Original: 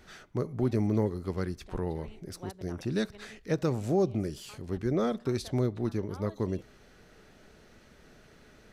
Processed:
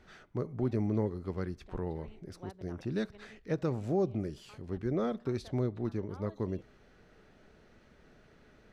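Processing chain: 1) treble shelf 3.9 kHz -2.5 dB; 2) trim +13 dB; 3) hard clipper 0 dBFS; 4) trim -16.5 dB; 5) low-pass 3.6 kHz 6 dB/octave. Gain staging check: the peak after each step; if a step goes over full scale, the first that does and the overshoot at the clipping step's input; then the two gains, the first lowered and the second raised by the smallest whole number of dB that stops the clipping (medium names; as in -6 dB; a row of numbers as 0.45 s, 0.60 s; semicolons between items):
-17.5 dBFS, -4.5 dBFS, -4.5 dBFS, -21.0 dBFS, -21.0 dBFS; nothing clips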